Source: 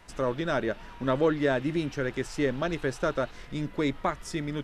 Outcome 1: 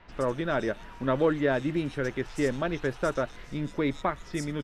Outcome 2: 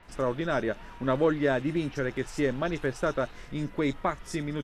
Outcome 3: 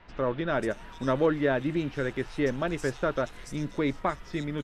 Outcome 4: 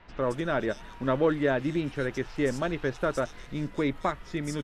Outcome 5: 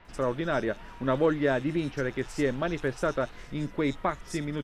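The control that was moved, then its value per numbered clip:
bands offset in time, time: 120, 30, 540, 220, 50 ms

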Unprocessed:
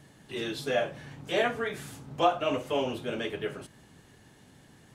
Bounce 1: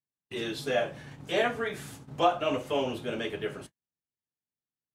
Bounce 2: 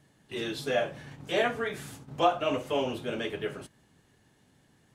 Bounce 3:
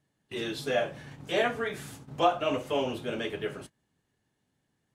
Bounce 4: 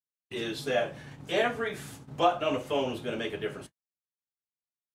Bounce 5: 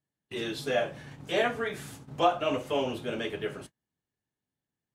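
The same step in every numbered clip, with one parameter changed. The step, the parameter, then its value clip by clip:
gate, range: -47, -8, -21, -59, -34 dB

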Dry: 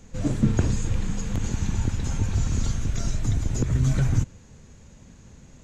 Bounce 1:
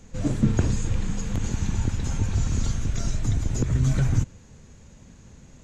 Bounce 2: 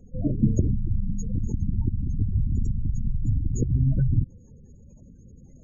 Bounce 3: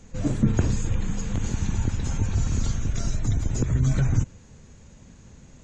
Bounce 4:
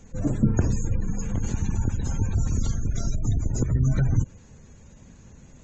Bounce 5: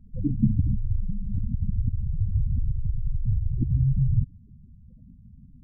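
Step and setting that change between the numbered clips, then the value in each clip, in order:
spectral gate, under each frame's peak: -60, -20, -45, -35, -10 dB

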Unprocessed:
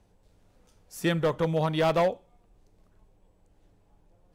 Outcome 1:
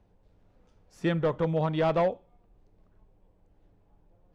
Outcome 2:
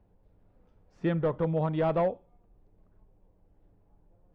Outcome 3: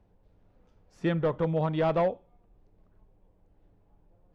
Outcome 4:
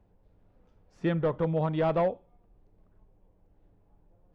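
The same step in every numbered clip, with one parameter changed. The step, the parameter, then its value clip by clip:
tape spacing loss, at 10 kHz: 20, 46, 29, 37 dB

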